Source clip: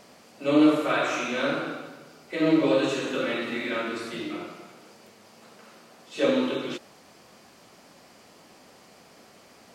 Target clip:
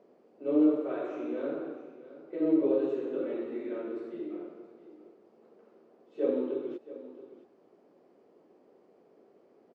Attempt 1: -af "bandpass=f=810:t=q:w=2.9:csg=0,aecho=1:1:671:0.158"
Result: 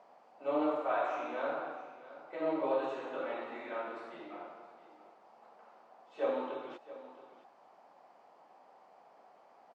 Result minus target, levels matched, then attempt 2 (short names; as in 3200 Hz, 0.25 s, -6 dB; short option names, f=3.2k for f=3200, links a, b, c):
1000 Hz band +16.5 dB
-af "bandpass=f=390:t=q:w=2.9:csg=0,aecho=1:1:671:0.158"